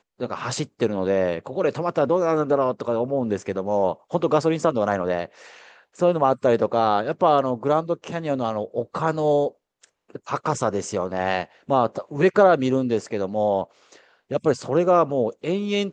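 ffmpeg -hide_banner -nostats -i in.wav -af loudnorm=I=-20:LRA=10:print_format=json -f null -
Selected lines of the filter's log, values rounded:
"input_i" : "-22.7",
"input_tp" : "-3.7",
"input_lra" : "2.5",
"input_thresh" : "-33.1",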